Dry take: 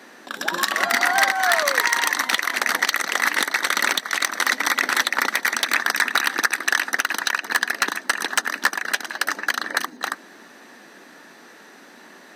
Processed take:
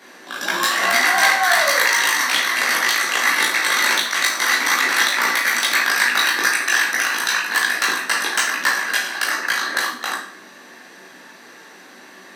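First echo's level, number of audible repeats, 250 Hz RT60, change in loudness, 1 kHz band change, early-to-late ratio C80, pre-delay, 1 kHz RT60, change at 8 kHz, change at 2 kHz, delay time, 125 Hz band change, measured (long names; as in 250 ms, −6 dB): no echo audible, no echo audible, 0.60 s, +4.0 dB, +2.5 dB, 9.0 dB, 16 ms, 0.55 s, +4.5 dB, +4.0 dB, no echo audible, can't be measured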